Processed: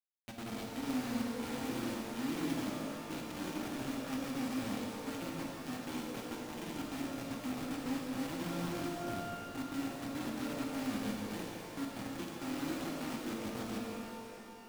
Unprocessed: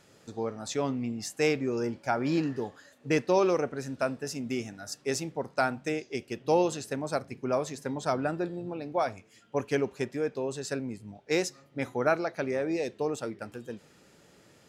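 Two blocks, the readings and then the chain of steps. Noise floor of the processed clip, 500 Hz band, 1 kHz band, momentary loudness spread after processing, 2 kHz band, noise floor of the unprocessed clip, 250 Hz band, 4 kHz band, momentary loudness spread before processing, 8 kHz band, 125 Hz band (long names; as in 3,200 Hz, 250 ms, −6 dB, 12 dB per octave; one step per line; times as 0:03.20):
−48 dBFS, −15.0 dB, −9.5 dB, 5 LU, −8.5 dB, −60 dBFS, −4.0 dB, −3.5 dB, 10 LU, −7.0 dB, −7.5 dB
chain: samples in bit-reversed order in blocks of 64 samples
reversed playback
downward compressor 8 to 1, threshold −41 dBFS, peak gain reduction 21 dB
reversed playback
brickwall limiter −35.5 dBFS, peak gain reduction 7 dB
formant resonators in series i
log-companded quantiser 4 bits
on a send: delay that swaps between a low-pass and a high-pass 157 ms, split 900 Hz, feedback 54%, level −11 dB
on the sum: reverb with rising layers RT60 3 s, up +12 semitones, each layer −8 dB, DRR −1.5 dB
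level +10.5 dB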